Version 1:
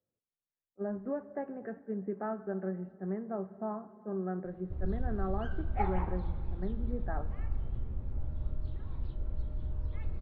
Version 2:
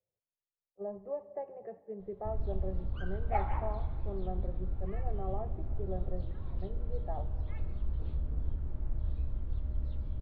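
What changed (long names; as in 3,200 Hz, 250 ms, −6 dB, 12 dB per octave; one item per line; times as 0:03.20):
speech: add phaser with its sweep stopped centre 620 Hz, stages 4
background: entry −2.45 s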